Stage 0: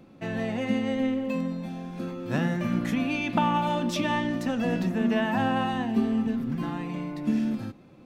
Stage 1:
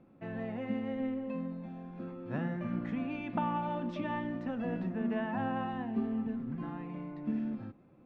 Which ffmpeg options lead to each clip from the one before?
ffmpeg -i in.wav -af "lowpass=1900,volume=-8.5dB" out.wav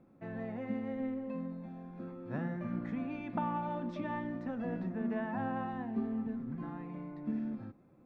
ffmpeg -i in.wav -af "equalizer=frequency=2900:width=3.7:gain=-7.5,volume=-2dB" out.wav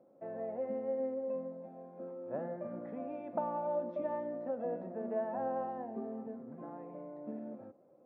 ffmpeg -i in.wav -af "bandpass=frequency=570:width_type=q:width=3.7:csg=0,volume=9.5dB" out.wav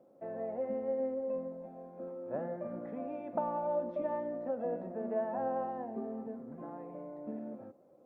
ffmpeg -i in.wav -af "volume=1.5dB" -ar 48000 -c:a libopus -b:a 48k out.opus

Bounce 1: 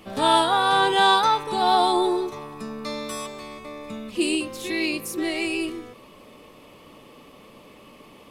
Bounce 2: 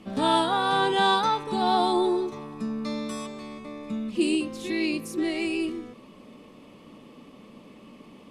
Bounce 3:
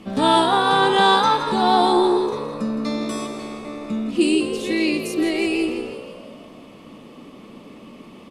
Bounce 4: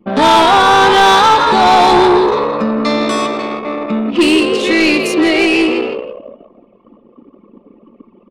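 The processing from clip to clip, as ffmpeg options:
ffmpeg -i in.wav -af "lowpass=9600,equalizer=frequency=220:width_type=o:width=1.1:gain=10.5,volume=-5dB" out.wav
ffmpeg -i in.wav -filter_complex "[0:a]asplit=7[link_01][link_02][link_03][link_04][link_05][link_06][link_07];[link_02]adelay=165,afreqshift=60,volume=-10.5dB[link_08];[link_03]adelay=330,afreqshift=120,volume=-15.5dB[link_09];[link_04]adelay=495,afreqshift=180,volume=-20.6dB[link_10];[link_05]adelay=660,afreqshift=240,volume=-25.6dB[link_11];[link_06]adelay=825,afreqshift=300,volume=-30.6dB[link_12];[link_07]adelay=990,afreqshift=360,volume=-35.7dB[link_13];[link_01][link_08][link_09][link_10][link_11][link_12][link_13]amix=inputs=7:normalize=0,volume=6dB" out.wav
ffmpeg -i in.wav -filter_complex "[0:a]asplit=2[link_01][link_02];[link_02]highpass=frequency=720:poles=1,volume=22dB,asoftclip=type=tanh:threshold=-3.5dB[link_03];[link_01][link_03]amix=inputs=2:normalize=0,lowpass=frequency=3200:poles=1,volume=-6dB,anlmdn=1580,volume=2.5dB" out.wav

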